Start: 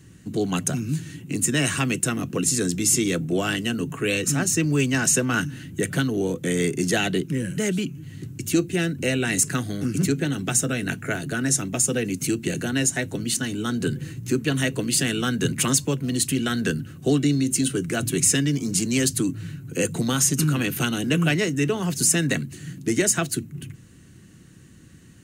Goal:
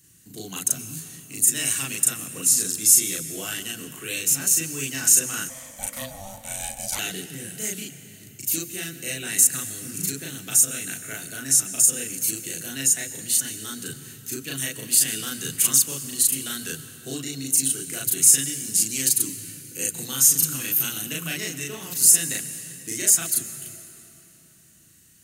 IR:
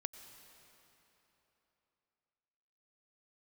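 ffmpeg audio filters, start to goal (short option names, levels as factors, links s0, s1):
-filter_complex "[0:a]equalizer=f=13000:t=o:w=0.4:g=6.5,asplit=2[s0][s1];[1:a]atrim=start_sample=2205,adelay=37[s2];[s1][s2]afir=irnorm=-1:irlink=0,volume=1.41[s3];[s0][s3]amix=inputs=2:normalize=0,asettb=1/sr,asplit=3[s4][s5][s6];[s4]atrim=end=5.494[s7];[s5]atrim=start=5.49:end=6.99,asetpts=PTS-STARTPTS,afade=t=in:d=0.004:c=qsin,afade=t=out:st=1.496:d=0.004:c=qsin,aeval=exprs='val(0)*sin(2*PI*390*n/s)':c=same[s8];[s6]atrim=start=6.986[s9];[s7][s8]acrossfade=d=0.004:c1=hsin:c2=qsin[s10];[s10][s9]acrossfade=d=0.004:c1=qsin:c2=hsin,crystalizer=i=7:c=0,volume=0.141"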